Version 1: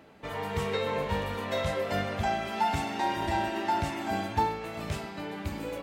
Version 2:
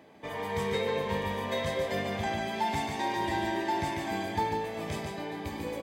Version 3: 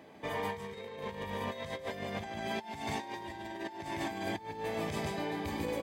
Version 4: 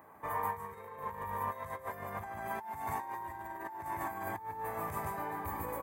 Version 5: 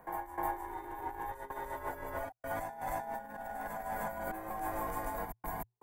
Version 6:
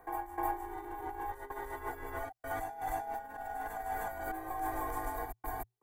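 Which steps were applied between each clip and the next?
notch comb 1400 Hz; dynamic EQ 730 Hz, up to -5 dB, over -39 dBFS, Q 1.9; on a send: echo 0.145 s -4.5 dB
negative-ratio compressor -35 dBFS, ratio -0.5; gain -2.5 dB
EQ curve 100 Hz 0 dB, 230 Hz -9 dB, 650 Hz -3 dB, 1100 Hz +10 dB, 2100 Hz -5 dB, 3200 Hz -18 dB, 5000 Hz -16 dB, 13000 Hz +13 dB; gain -1.5 dB
step gate "x.xxxxx.xxxx.x.x" 80 bpm -60 dB; reverse echo 0.307 s -4 dB; frequency shift -120 Hz
comb 2.6 ms, depth 86%; gain -2.5 dB

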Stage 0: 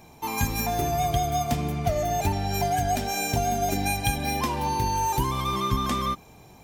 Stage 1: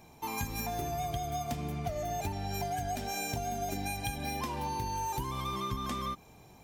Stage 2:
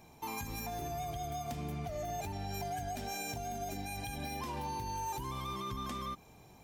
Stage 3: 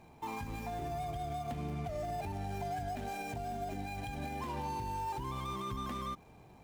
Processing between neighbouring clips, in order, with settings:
compressor 3:1, threshold -27 dBFS, peak gain reduction 7 dB; gain -5.5 dB
limiter -28.5 dBFS, peak gain reduction 7.5 dB; gain -2 dB
median filter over 9 samples; gain +1 dB

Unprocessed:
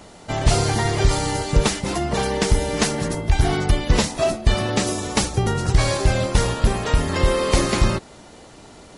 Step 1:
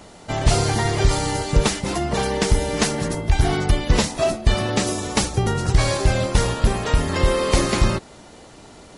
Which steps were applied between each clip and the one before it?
nothing audible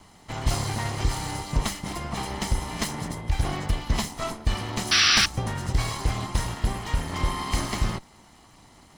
minimum comb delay 0.97 ms; painted sound noise, 4.91–5.26, 1100–6000 Hz -12 dBFS; gain -7 dB

